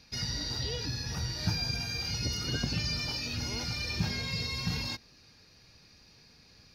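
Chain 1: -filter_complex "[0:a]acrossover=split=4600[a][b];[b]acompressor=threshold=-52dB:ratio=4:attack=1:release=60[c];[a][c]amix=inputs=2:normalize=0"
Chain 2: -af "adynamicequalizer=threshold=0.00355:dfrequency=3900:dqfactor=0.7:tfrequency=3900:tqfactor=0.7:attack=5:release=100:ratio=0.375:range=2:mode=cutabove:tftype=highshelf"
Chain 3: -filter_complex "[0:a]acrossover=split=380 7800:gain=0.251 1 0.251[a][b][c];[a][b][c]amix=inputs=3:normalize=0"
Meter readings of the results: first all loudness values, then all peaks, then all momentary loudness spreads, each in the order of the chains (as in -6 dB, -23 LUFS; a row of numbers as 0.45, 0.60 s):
-34.5, -34.0, -34.5 LUFS; -18.0, -18.0, -23.5 dBFS; 3, 3, 4 LU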